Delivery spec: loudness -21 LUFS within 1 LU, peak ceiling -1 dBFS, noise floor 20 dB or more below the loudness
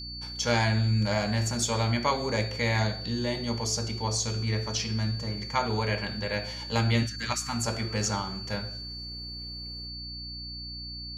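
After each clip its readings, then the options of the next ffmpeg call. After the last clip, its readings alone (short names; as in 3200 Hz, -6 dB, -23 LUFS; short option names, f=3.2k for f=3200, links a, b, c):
hum 60 Hz; harmonics up to 300 Hz; hum level -41 dBFS; steady tone 4500 Hz; tone level -38 dBFS; loudness -29.5 LUFS; peak -11.0 dBFS; loudness target -21.0 LUFS
-> -af "bandreject=f=60:t=h:w=4,bandreject=f=120:t=h:w=4,bandreject=f=180:t=h:w=4,bandreject=f=240:t=h:w=4,bandreject=f=300:t=h:w=4"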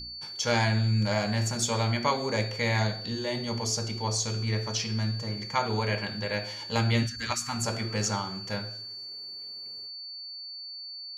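hum none; steady tone 4500 Hz; tone level -38 dBFS
-> -af "bandreject=f=4.5k:w=30"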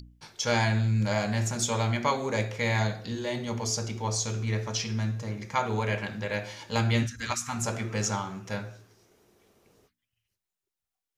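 steady tone none; loudness -29.0 LUFS; peak -11.5 dBFS; loudness target -21.0 LUFS
-> -af "volume=8dB"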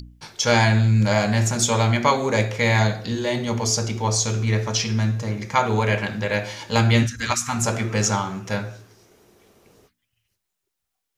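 loudness -21.0 LUFS; peak -3.5 dBFS; noise floor -80 dBFS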